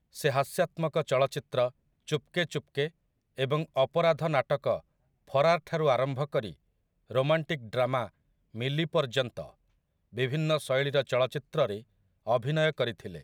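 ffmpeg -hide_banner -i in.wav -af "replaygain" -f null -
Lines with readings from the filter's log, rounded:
track_gain = +8.4 dB
track_peak = 0.208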